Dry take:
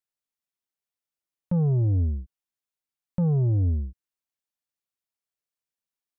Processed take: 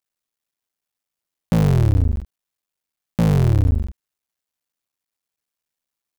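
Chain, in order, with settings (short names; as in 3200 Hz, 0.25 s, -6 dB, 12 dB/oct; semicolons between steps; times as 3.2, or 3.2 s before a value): cycle switcher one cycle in 3, muted; gain +8 dB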